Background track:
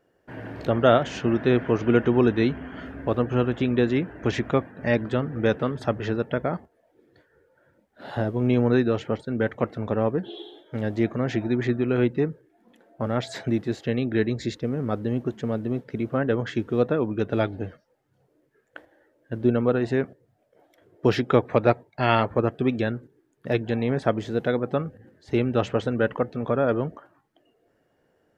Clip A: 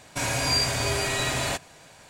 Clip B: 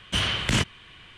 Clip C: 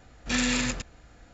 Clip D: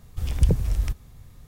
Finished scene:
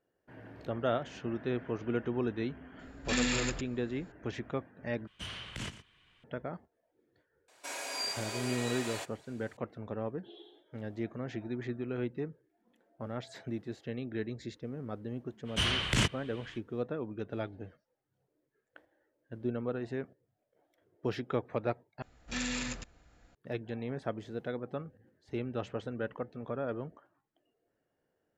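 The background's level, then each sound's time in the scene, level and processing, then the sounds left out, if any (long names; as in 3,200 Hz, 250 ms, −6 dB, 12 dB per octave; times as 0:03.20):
background track −13.5 dB
0:02.79: mix in C −5 dB + notch filter 6,000 Hz, Q 10
0:05.07: overwrite with B −17.5 dB + single-tap delay 117 ms −13.5 dB
0:07.48: mix in A −12 dB + high-pass filter 340 Hz 24 dB per octave
0:15.44: mix in B −5 dB, fades 0.05 s
0:22.02: overwrite with C −9.5 dB
not used: D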